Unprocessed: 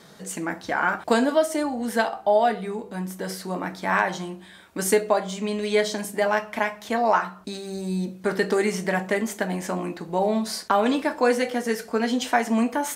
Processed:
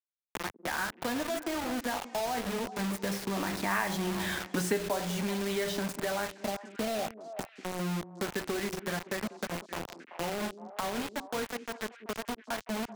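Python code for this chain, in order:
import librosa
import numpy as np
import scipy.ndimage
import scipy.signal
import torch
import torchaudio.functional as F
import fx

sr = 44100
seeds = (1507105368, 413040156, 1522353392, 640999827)

p1 = fx.doppler_pass(x, sr, speed_mps=18, closest_m=4.7, pass_at_s=4.29)
p2 = fx.riaa(p1, sr, side='playback')
p3 = fx.spec_box(p2, sr, start_s=6.38, length_s=1.74, low_hz=800.0, high_hz=6100.0, gain_db=-26)
p4 = fx.tilt_shelf(p3, sr, db=-6.0, hz=800.0)
p5 = fx.over_compress(p4, sr, threshold_db=-42.0, ratio=-1.0)
p6 = p4 + (p5 * librosa.db_to_amplitude(2.0))
p7 = fx.quant_dither(p6, sr, seeds[0], bits=6, dither='none')
p8 = p7 + fx.echo_stepped(p7, sr, ms=191, hz=300.0, octaves=1.4, feedback_pct=70, wet_db=-11.0, dry=0)
y = fx.band_squash(p8, sr, depth_pct=70)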